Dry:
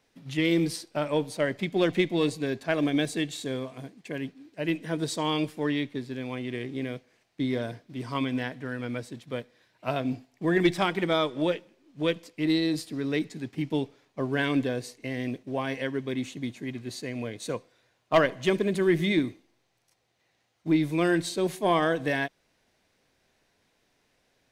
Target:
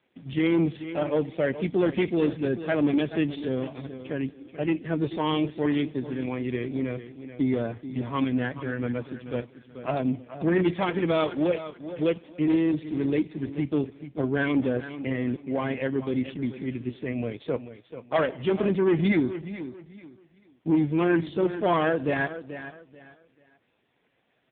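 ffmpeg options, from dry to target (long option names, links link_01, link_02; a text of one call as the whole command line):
ffmpeg -i in.wav -af "asoftclip=type=tanh:threshold=-21.5dB,aecho=1:1:436|872|1308:0.251|0.0678|0.0183,volume=5dB" -ar 8000 -c:a libopencore_amrnb -b:a 4750 out.amr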